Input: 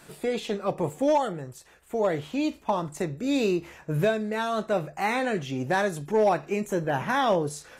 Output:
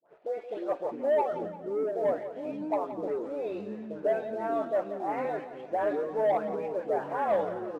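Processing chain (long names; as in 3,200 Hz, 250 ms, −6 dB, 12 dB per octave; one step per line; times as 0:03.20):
every frequency bin delayed by itself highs late, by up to 321 ms
four-pole ladder band-pass 720 Hz, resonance 45%
leveller curve on the samples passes 1
pitch vibrato 0.35 Hz 9.1 cents
repeating echo 173 ms, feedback 50%, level −12 dB
delay with pitch and tempo change per echo 197 ms, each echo −6 semitones, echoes 3, each echo −6 dB
level +2.5 dB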